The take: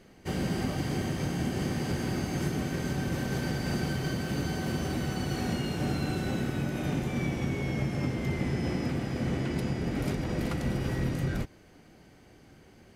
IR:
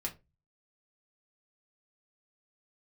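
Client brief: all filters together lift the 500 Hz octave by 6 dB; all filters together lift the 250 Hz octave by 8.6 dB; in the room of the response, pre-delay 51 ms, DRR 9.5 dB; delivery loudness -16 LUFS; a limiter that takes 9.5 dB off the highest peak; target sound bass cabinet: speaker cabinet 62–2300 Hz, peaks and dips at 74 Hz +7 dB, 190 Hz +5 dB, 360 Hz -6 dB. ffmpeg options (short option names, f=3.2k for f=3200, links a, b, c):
-filter_complex "[0:a]equalizer=f=250:t=o:g=8,equalizer=f=500:t=o:g=7.5,alimiter=limit=-20.5dB:level=0:latency=1,asplit=2[a][b];[1:a]atrim=start_sample=2205,adelay=51[c];[b][c]afir=irnorm=-1:irlink=0,volume=-10.5dB[d];[a][d]amix=inputs=2:normalize=0,highpass=f=62:w=0.5412,highpass=f=62:w=1.3066,equalizer=f=74:t=q:w=4:g=7,equalizer=f=190:t=q:w=4:g=5,equalizer=f=360:t=q:w=4:g=-6,lowpass=f=2.3k:w=0.5412,lowpass=f=2.3k:w=1.3066,volume=12dB"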